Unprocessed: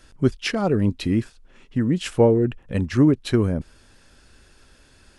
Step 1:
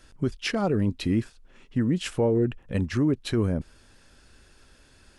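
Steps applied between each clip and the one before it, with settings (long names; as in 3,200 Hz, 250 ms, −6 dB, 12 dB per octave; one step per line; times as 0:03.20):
brickwall limiter −12.5 dBFS, peak gain reduction 7 dB
level −2.5 dB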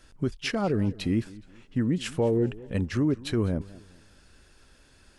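feedback echo with a swinging delay time 207 ms, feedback 34%, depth 168 cents, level −20 dB
level −1.5 dB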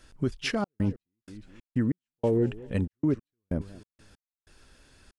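gate pattern "xxxx.x..xx.x.." 94 BPM −60 dB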